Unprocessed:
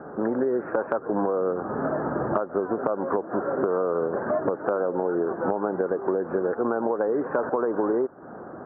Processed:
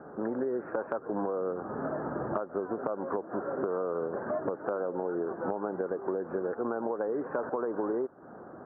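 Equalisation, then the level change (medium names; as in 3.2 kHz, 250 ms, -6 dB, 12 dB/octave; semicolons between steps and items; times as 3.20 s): distance through air 70 m; -7.0 dB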